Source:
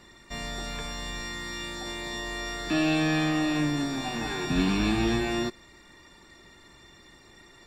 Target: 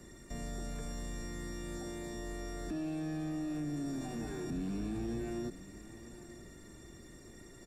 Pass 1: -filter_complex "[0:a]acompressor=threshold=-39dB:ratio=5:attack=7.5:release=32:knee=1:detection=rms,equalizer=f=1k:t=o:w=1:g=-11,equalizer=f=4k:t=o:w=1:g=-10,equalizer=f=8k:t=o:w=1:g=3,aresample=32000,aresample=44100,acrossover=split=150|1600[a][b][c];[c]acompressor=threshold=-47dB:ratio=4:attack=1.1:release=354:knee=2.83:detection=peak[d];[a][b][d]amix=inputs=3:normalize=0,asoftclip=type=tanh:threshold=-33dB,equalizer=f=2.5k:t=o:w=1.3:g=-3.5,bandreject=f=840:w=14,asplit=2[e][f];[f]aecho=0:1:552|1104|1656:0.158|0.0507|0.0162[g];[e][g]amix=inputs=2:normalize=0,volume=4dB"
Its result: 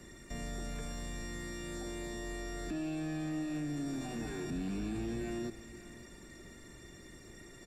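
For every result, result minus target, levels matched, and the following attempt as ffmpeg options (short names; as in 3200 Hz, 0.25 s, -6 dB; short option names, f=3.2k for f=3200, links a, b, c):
echo 0.386 s early; 2000 Hz band +3.5 dB
-filter_complex "[0:a]acompressor=threshold=-39dB:ratio=5:attack=7.5:release=32:knee=1:detection=rms,equalizer=f=1k:t=o:w=1:g=-11,equalizer=f=4k:t=o:w=1:g=-10,equalizer=f=8k:t=o:w=1:g=3,aresample=32000,aresample=44100,acrossover=split=150|1600[a][b][c];[c]acompressor=threshold=-47dB:ratio=4:attack=1.1:release=354:knee=2.83:detection=peak[d];[a][b][d]amix=inputs=3:normalize=0,asoftclip=type=tanh:threshold=-33dB,equalizer=f=2.5k:t=o:w=1.3:g=-3.5,bandreject=f=840:w=14,asplit=2[e][f];[f]aecho=0:1:938|1876|2814:0.158|0.0507|0.0162[g];[e][g]amix=inputs=2:normalize=0,volume=4dB"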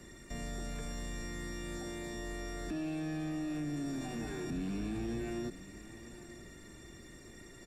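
2000 Hz band +4.0 dB
-filter_complex "[0:a]acompressor=threshold=-39dB:ratio=5:attack=7.5:release=32:knee=1:detection=rms,equalizer=f=1k:t=o:w=1:g=-11,equalizer=f=4k:t=o:w=1:g=-10,equalizer=f=8k:t=o:w=1:g=3,aresample=32000,aresample=44100,acrossover=split=150|1600[a][b][c];[c]acompressor=threshold=-47dB:ratio=4:attack=1.1:release=354:knee=2.83:detection=peak[d];[a][b][d]amix=inputs=3:normalize=0,asoftclip=type=tanh:threshold=-33dB,equalizer=f=2.5k:t=o:w=1.3:g=-9.5,bandreject=f=840:w=14,asplit=2[e][f];[f]aecho=0:1:938|1876|2814:0.158|0.0507|0.0162[g];[e][g]amix=inputs=2:normalize=0,volume=4dB"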